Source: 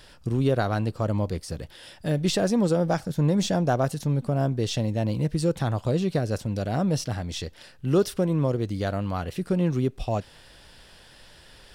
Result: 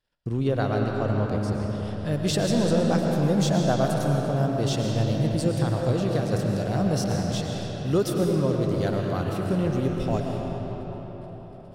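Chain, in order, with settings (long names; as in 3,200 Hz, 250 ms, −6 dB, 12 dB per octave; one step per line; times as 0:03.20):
noise gate −46 dBFS, range −30 dB
high-shelf EQ 6,300 Hz −8.5 dB, from 0:02.12 +3.5 dB
convolution reverb RT60 4.9 s, pre-delay 75 ms, DRR 0 dB
level −2 dB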